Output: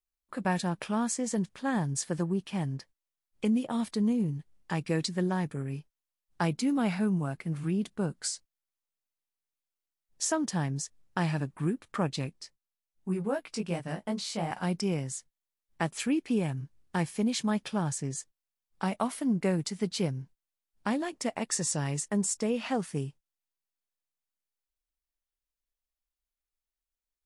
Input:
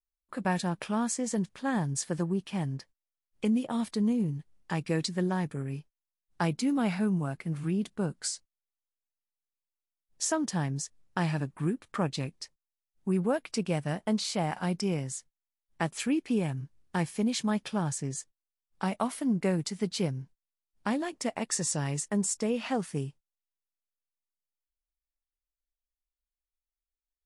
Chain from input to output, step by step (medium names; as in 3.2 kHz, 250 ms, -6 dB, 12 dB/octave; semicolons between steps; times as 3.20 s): 12.33–14.51 s: chorus 2.7 Hz, delay 16.5 ms, depth 2.6 ms